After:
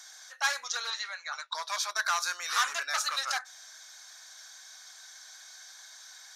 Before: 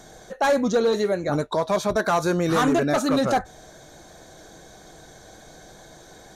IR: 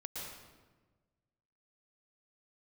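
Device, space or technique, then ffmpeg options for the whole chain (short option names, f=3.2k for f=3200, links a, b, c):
headphones lying on a table: -filter_complex "[0:a]highpass=f=1.2k:w=0.5412,highpass=f=1.2k:w=1.3066,equalizer=f=5.2k:t=o:w=0.48:g=9,asettb=1/sr,asplit=3[a][b][c];[a]atrim=end=0.904[d];[b]atrim=start=0.9:end=1.55,asetpts=PTS-STARTPTS,afade=t=in:d=0.004:c=qsin,afade=t=out:st=0.646:d=0.004:c=qsin,acrossover=split=580 6600:gain=0.0631 1 0.0708[e][f][g];[e][f][g]amix=inputs=3:normalize=0[h];[c]atrim=start=1.546[i];[d][h]acrossfade=d=0.004:c1=hsin:c2=qsin[j];[j][i]acrossfade=d=0.004:c1=qsin:c2=hsin,volume=-1dB"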